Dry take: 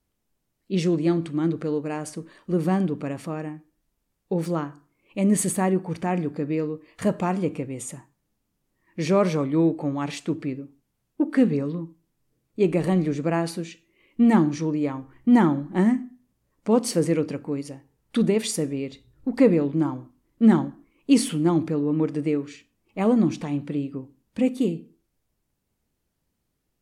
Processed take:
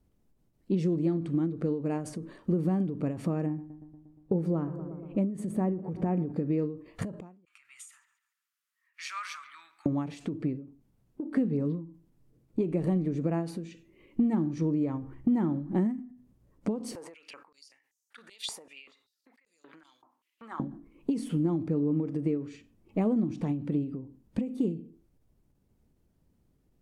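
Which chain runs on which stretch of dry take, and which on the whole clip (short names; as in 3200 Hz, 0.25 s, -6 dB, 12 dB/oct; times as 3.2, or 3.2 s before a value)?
3.46–6.32 high shelf 2100 Hz -10 dB + darkening echo 0.118 s, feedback 72%, low-pass 1900 Hz, level -17.5 dB
7.45–9.86 elliptic high-pass 1300 Hz, stop band 60 dB + dark delay 0.138 s, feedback 36%, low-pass 2900 Hz, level -15 dB
16.95–20.6 compressor 12:1, threshold -29 dBFS + stepped high-pass 5.2 Hz 880–6300 Hz
whole clip: tilt shelf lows +7 dB, about 770 Hz; compressor 5:1, threshold -28 dBFS; ending taper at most 110 dB/s; gain +2.5 dB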